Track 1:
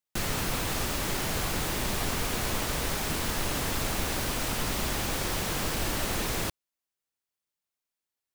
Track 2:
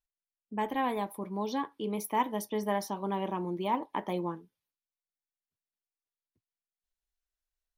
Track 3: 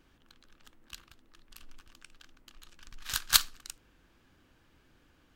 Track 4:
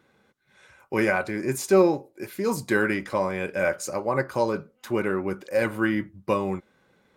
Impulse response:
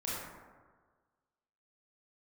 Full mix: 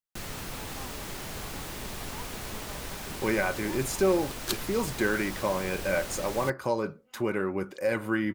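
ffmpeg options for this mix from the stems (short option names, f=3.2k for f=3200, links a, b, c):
-filter_complex "[0:a]volume=-8dB[a];[1:a]volume=-17.5dB,asplit=2[b][c];[2:a]adelay=1150,volume=-10dB[d];[3:a]acompressor=threshold=-32dB:ratio=1.5,adelay=2300,volume=0.5dB[e];[c]apad=whole_len=286686[f];[d][f]sidechaincompress=threshold=-55dB:ratio=8:attack=16:release=161[g];[a][b][g][e]amix=inputs=4:normalize=0"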